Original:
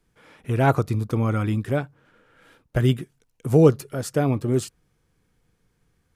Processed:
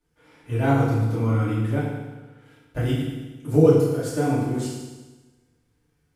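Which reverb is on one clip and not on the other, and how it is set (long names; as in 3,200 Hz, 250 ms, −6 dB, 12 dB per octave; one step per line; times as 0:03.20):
feedback delay network reverb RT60 1.2 s, low-frequency decay 1.1×, high-frequency decay 1×, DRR −9.5 dB
level −11.5 dB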